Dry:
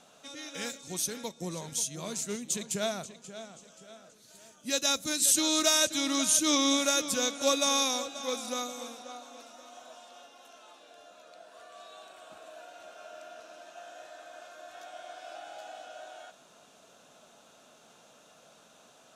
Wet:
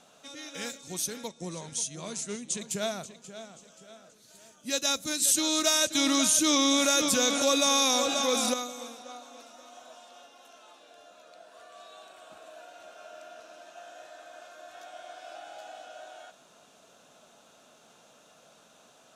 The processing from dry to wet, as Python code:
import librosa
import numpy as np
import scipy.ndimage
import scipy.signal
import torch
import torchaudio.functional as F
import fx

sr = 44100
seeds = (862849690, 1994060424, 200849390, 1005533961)

y = fx.cheby1_lowpass(x, sr, hz=11000.0, order=10, at=(1.27, 2.6), fade=0.02)
y = fx.env_flatten(y, sr, amount_pct=70, at=(5.95, 8.54))